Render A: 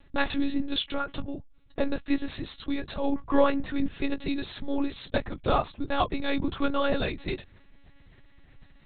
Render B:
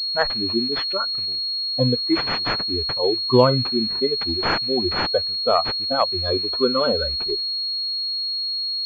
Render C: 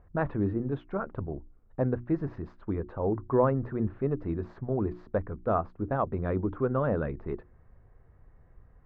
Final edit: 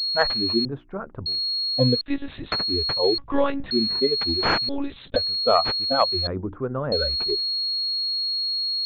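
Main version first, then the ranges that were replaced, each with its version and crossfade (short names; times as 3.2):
B
0.65–1.26 from C
2.01–2.52 from A
3.18–3.71 from A
4.69–5.16 from A
6.27–6.92 from C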